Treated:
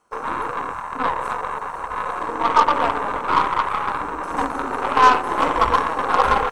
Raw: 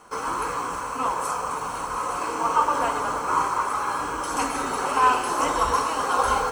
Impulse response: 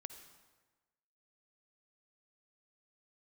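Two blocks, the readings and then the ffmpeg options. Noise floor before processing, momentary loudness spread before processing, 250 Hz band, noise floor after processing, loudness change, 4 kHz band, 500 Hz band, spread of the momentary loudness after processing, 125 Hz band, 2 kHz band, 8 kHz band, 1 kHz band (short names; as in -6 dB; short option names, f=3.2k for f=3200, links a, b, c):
-31 dBFS, 8 LU, +3.5 dB, -31 dBFS, +4.0 dB, +3.0 dB, +3.5 dB, 12 LU, +4.0 dB, +5.0 dB, n/a, +4.0 dB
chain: -af "afwtdn=0.0447,aeval=exprs='0.422*(cos(1*acos(clip(val(0)/0.422,-1,1)))-cos(1*PI/2))+0.0237*(cos(7*acos(clip(val(0)/0.422,-1,1)))-cos(7*PI/2))+0.0168*(cos(8*acos(clip(val(0)/0.422,-1,1)))-cos(8*PI/2))':c=same,volume=6dB"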